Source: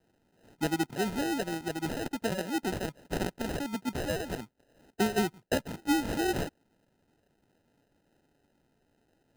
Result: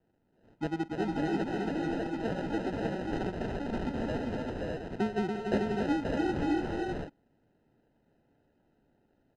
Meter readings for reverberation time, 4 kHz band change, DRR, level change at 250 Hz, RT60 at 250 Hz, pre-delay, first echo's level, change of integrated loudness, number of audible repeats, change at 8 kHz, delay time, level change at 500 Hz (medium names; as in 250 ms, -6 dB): no reverb, -7.5 dB, no reverb, +1.0 dB, no reverb, no reverb, -20.0 dB, -0.5 dB, 6, under -15 dB, 122 ms, +0.5 dB